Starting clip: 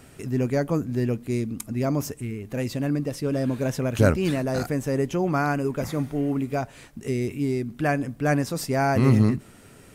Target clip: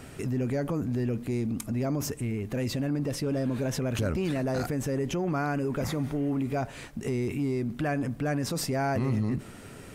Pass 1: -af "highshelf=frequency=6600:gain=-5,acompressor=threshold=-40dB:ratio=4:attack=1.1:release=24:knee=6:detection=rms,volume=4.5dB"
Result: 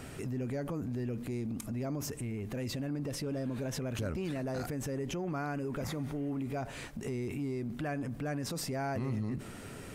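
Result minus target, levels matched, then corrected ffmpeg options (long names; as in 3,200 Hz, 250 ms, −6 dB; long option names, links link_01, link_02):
downward compressor: peak gain reduction +7 dB
-af "highshelf=frequency=6600:gain=-5,acompressor=threshold=-30.5dB:ratio=4:attack=1.1:release=24:knee=6:detection=rms,volume=4.5dB"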